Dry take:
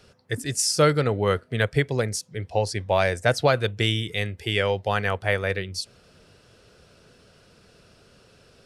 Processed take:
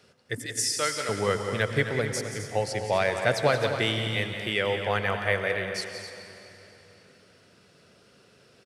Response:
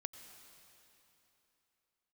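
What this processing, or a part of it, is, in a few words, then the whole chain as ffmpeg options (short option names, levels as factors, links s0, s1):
stadium PA: -filter_complex "[0:a]asettb=1/sr,asplit=3[s0][s1][s2];[s0]atrim=end=0.464[s3];[s1]atrim=start=0.46:end=1.09,asetpts=PTS-STARTPTS,afade=t=in:d=0.004:c=qsin,afade=t=out:st=0.626:d=0.004:c=qsin,highpass=f=1300:p=1[s4];[s2]atrim=start=1.086[s5];[s3][s4]acrossfade=d=0.004:c1=hsin:c2=qsin[s6];[s6][s5]acrossfade=d=0.004:c1=qsin:c2=hsin,highpass=120,equalizer=f=2000:t=o:w=0.27:g=4,aecho=1:1:177.8|259.5:0.316|0.282[s7];[1:a]atrim=start_sample=2205[s8];[s7][s8]afir=irnorm=-1:irlink=0"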